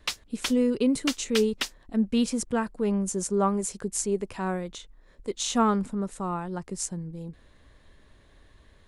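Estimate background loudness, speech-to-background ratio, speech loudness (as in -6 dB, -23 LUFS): -33.5 LUFS, 5.5 dB, -28.0 LUFS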